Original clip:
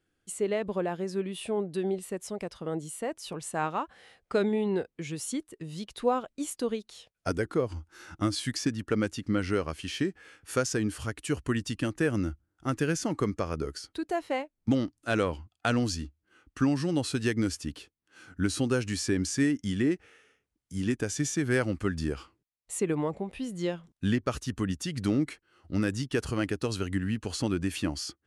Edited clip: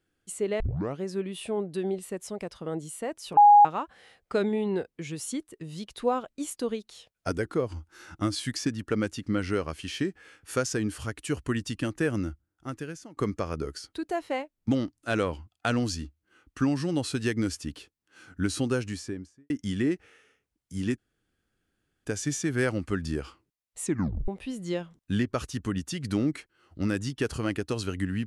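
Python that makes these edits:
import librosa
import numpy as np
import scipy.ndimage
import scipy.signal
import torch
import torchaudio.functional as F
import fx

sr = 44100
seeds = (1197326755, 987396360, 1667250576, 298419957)

y = fx.studio_fade_out(x, sr, start_s=18.66, length_s=0.84)
y = fx.edit(y, sr, fx.tape_start(start_s=0.6, length_s=0.4),
    fx.bleep(start_s=3.37, length_s=0.28, hz=825.0, db=-11.0),
    fx.fade_out_to(start_s=12.11, length_s=1.06, floor_db=-23.5),
    fx.insert_room_tone(at_s=20.98, length_s=1.07),
    fx.tape_stop(start_s=22.77, length_s=0.44), tone=tone)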